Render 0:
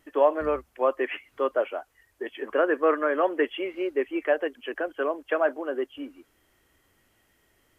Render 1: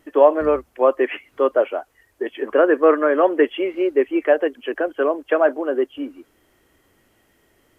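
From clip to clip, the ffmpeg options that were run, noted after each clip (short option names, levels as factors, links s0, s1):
-af "equalizer=f=350:t=o:w=2.6:g=5.5,volume=1.5"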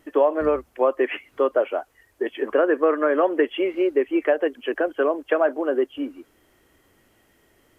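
-af "acompressor=threshold=0.158:ratio=3"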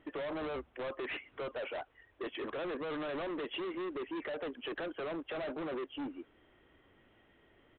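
-af "alimiter=limit=0.119:level=0:latency=1:release=23,aresample=8000,asoftclip=type=hard:threshold=0.0251,aresample=44100,volume=0.596"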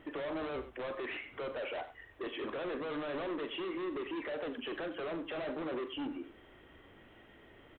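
-filter_complex "[0:a]alimiter=level_in=8.41:limit=0.0631:level=0:latency=1:release=18,volume=0.119,asplit=2[s0][s1];[s1]aecho=0:1:41|93:0.282|0.237[s2];[s0][s2]amix=inputs=2:normalize=0,volume=2.24"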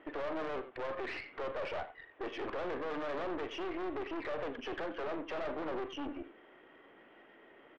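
-af "highpass=310,lowpass=2400,aeval=exprs='(tanh(79.4*val(0)+0.75)-tanh(0.75))/79.4':c=same,volume=2"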